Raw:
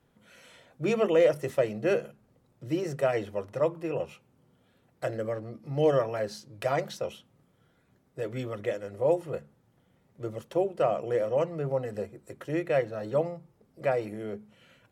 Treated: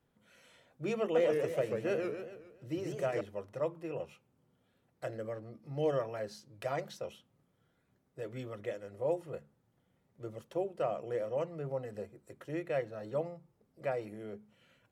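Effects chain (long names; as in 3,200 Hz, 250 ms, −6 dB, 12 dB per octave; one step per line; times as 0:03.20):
0:01.01–0:03.21: feedback echo with a swinging delay time 138 ms, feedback 46%, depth 201 cents, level −4 dB
level −8 dB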